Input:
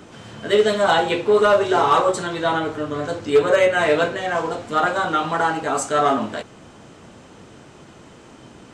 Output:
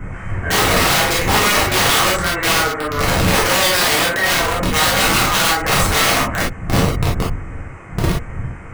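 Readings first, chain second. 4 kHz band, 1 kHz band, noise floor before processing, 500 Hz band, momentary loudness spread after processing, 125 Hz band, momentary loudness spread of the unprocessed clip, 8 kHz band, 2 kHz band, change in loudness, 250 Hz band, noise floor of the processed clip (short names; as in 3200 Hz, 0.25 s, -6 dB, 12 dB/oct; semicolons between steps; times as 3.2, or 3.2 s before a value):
+13.0 dB, +2.5 dB, -45 dBFS, -3.0 dB, 11 LU, +14.5 dB, 9 LU, +16.0 dB, +8.0 dB, +4.0 dB, +4.5 dB, -32 dBFS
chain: wind noise 88 Hz -20 dBFS; EQ curve 360 Hz 0 dB, 980 Hz +5 dB, 2200 Hz +12 dB, 3800 Hz -22 dB, 7600 Hz -3 dB; limiter -8.5 dBFS, peak gain reduction 9 dB; wrapped overs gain 12 dB; non-linear reverb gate 80 ms flat, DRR -5 dB; gain -3 dB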